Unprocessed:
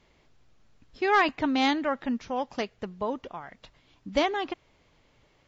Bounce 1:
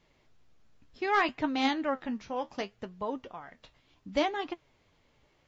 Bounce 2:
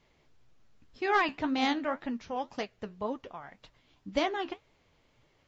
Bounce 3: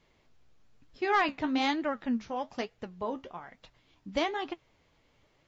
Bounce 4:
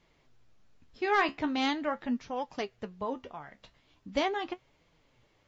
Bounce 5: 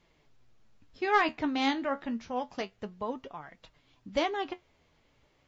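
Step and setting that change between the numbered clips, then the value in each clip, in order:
flange, rate: 0.66 Hz, 1.9 Hz, 1.1 Hz, 0.41 Hz, 0.28 Hz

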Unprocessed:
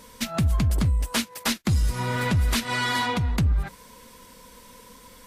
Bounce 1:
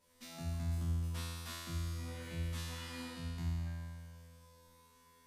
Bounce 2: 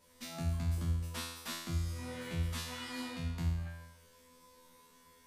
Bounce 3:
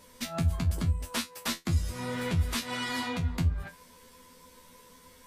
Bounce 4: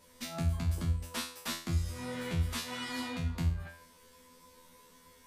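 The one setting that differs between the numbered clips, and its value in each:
feedback comb, decay: 2.1 s, 0.92 s, 0.17 s, 0.44 s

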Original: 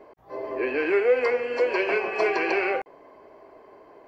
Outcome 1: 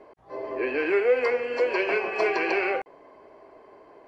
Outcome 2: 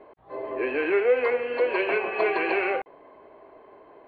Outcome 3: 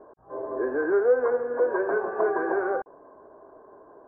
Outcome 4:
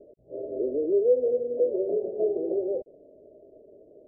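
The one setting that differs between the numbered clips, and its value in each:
Chebyshev low-pass, frequency: 11 kHz, 4.1 kHz, 1.6 kHz, 620 Hz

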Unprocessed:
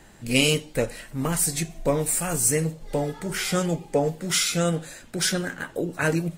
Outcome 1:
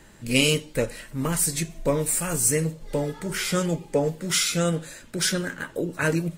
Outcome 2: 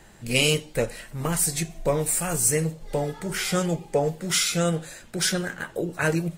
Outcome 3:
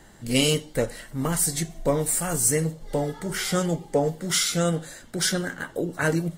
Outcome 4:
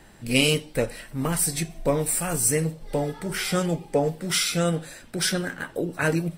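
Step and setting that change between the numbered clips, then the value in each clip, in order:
band-stop, frequency: 750 Hz, 270 Hz, 2.5 kHz, 6.8 kHz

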